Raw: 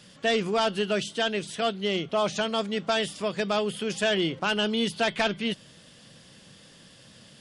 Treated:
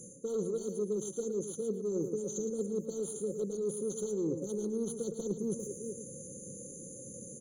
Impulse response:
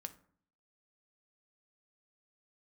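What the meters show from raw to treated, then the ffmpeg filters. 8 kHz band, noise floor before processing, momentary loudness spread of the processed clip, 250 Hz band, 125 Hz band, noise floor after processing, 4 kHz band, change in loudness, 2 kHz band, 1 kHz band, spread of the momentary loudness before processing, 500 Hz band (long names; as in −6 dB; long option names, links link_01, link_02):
+0.5 dB, −53 dBFS, 10 LU, −6.0 dB, −6.0 dB, −48 dBFS, below −30 dB, −9.5 dB, below −40 dB, below −25 dB, 5 LU, −6.0 dB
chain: -filter_complex "[0:a]acontrast=35,asplit=2[link_01][link_02];[link_02]adelay=400,highpass=300,lowpass=3400,asoftclip=type=hard:threshold=-19.5dB,volume=-14dB[link_03];[link_01][link_03]amix=inputs=2:normalize=0,crystalizer=i=3:c=0,afftfilt=real='re*(1-between(b*sr/4096,560,4600))':imag='im*(1-between(b*sr/4096,560,4600))':win_size=4096:overlap=0.75,asplit=2[link_04][link_05];[link_05]highpass=frequency=720:poles=1,volume=14dB,asoftclip=type=tanh:threshold=-7.5dB[link_06];[link_04][link_06]amix=inputs=2:normalize=0,lowpass=frequency=5500:poles=1,volume=-6dB,adynamicequalizer=threshold=0.00282:dfrequency=1100:dqfactor=3.6:tfrequency=1100:tqfactor=3.6:attack=5:release=100:ratio=0.375:range=2.5:mode=cutabove:tftype=bell,areverse,acompressor=threshold=-30dB:ratio=20,areverse,highshelf=frequency=4400:gain=-9,asplit=2[link_07][link_08];[link_08]aecho=0:1:111:0.355[link_09];[link_07][link_09]amix=inputs=2:normalize=0,afftfilt=real='re*eq(mod(floor(b*sr/1024/1500),2),0)':imag='im*eq(mod(floor(b*sr/1024/1500),2),0)':win_size=1024:overlap=0.75"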